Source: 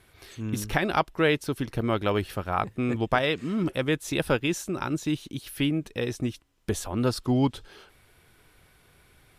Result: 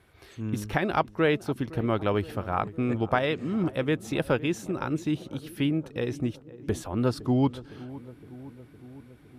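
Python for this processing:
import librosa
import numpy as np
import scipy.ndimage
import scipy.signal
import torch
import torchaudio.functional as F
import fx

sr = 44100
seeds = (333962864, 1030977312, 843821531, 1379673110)

p1 = scipy.signal.sosfilt(scipy.signal.butter(2, 46.0, 'highpass', fs=sr, output='sos'), x)
p2 = fx.high_shelf(p1, sr, hz=2700.0, db=-8.5)
y = p2 + fx.echo_filtered(p2, sr, ms=511, feedback_pct=72, hz=1000.0, wet_db=-17.0, dry=0)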